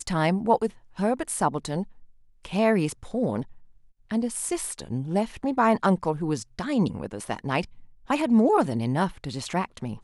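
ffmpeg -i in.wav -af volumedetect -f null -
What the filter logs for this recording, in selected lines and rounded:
mean_volume: -26.1 dB
max_volume: -8.1 dB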